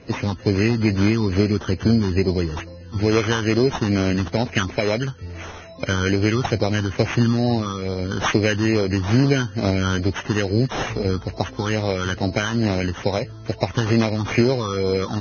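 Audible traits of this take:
phaser sweep stages 6, 2.3 Hz, lowest notch 610–1,600 Hz
aliases and images of a low sample rate 4,600 Hz, jitter 0%
Ogg Vorbis

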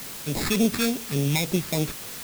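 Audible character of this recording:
aliases and images of a low sample rate 3,000 Hz, jitter 0%
phaser sweep stages 2, 3.5 Hz, lowest notch 560–1,400 Hz
a quantiser's noise floor 6 bits, dither triangular

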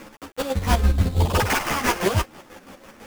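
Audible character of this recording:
a quantiser's noise floor 8 bits, dither none
chopped level 6 Hz, depth 60%, duty 45%
aliases and images of a low sample rate 4,000 Hz, jitter 20%
a shimmering, thickened sound

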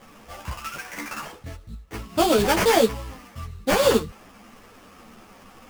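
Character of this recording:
aliases and images of a low sample rate 4,000 Hz, jitter 20%
a shimmering, thickened sound

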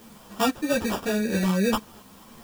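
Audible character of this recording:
aliases and images of a low sample rate 2,100 Hz, jitter 0%
tremolo saw up 2 Hz, depth 40%
a quantiser's noise floor 10 bits, dither triangular
a shimmering, thickened sound

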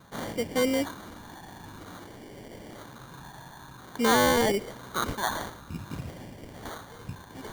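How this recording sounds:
phaser sweep stages 8, 0.51 Hz, lowest notch 450–1,200 Hz
aliases and images of a low sample rate 2,600 Hz, jitter 0%

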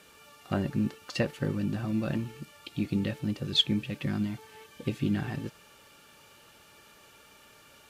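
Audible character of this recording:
background noise floor −57 dBFS
spectral slope −5.0 dB per octave

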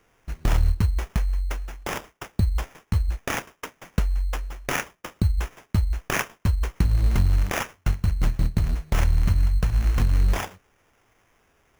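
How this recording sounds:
phaser sweep stages 2, 0.6 Hz, lowest notch 500–1,400 Hz
aliases and images of a low sample rate 4,200 Hz, jitter 0%

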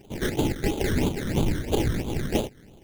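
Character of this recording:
aliases and images of a low sample rate 1,200 Hz, jitter 20%
phaser sweep stages 12, 3 Hz, lowest notch 800–1,800 Hz

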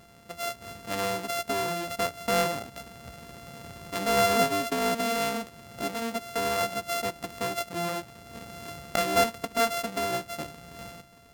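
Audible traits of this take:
a buzz of ramps at a fixed pitch in blocks of 64 samples
Ogg Vorbis

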